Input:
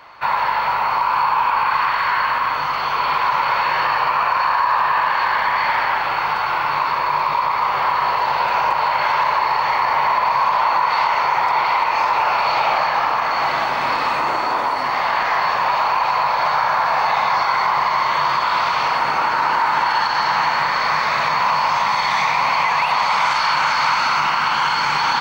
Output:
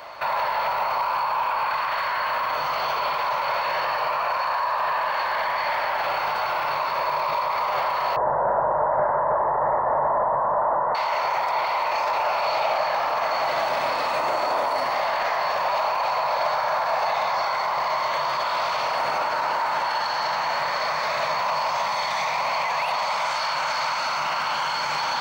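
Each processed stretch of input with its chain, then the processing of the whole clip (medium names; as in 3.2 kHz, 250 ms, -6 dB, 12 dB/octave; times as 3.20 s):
8.16–10.95 s: steep low-pass 1.9 kHz 96 dB/octave + tilt shelf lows +10 dB, about 1.1 kHz
whole clip: treble shelf 4.9 kHz +11 dB; peak limiter -19 dBFS; peaking EQ 610 Hz +12.5 dB 0.57 oct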